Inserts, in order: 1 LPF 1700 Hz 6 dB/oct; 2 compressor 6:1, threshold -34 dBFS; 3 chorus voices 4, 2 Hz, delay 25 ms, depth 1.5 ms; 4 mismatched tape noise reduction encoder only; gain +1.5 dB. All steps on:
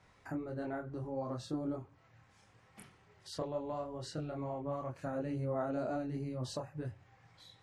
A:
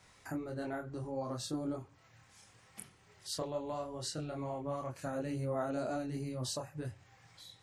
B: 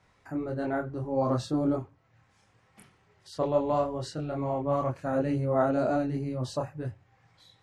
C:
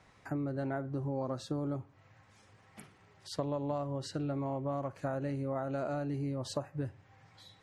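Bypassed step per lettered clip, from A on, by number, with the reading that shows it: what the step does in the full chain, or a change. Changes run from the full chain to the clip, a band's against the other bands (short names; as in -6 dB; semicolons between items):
1, 8 kHz band +9.5 dB; 2, mean gain reduction 8.5 dB; 3, loudness change +3.0 LU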